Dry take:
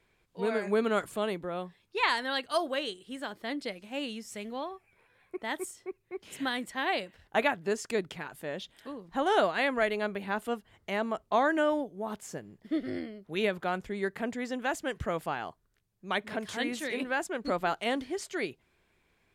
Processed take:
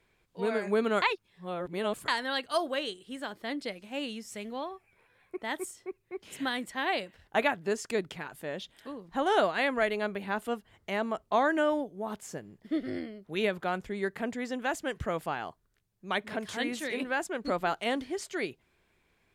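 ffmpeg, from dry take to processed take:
-filter_complex "[0:a]asplit=3[a][b][c];[a]atrim=end=1.022[d];[b]atrim=start=1.018:end=2.082,asetpts=PTS-STARTPTS,areverse[e];[c]atrim=start=2.078[f];[d][e]acrossfade=d=0.004:c1=hsin:c2=hsin[g];[g][f]acrossfade=d=0.004:c1=hsin:c2=hsin"

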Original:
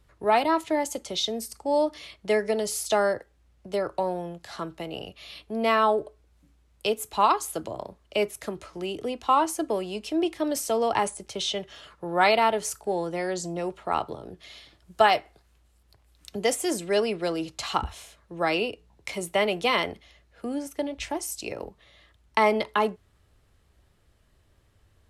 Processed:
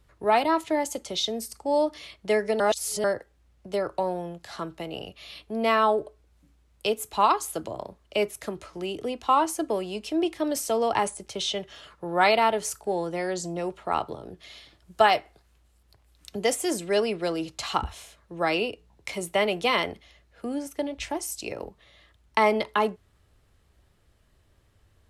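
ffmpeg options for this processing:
-filter_complex "[0:a]asplit=3[a][b][c];[a]atrim=end=2.602[d];[b]atrim=start=2.598:end=3.042,asetpts=PTS-STARTPTS,areverse[e];[c]atrim=start=3.038[f];[d][e]acrossfade=d=0.004:c1=hsin:c2=hsin[g];[g][f]acrossfade=d=0.004:c1=hsin:c2=hsin"

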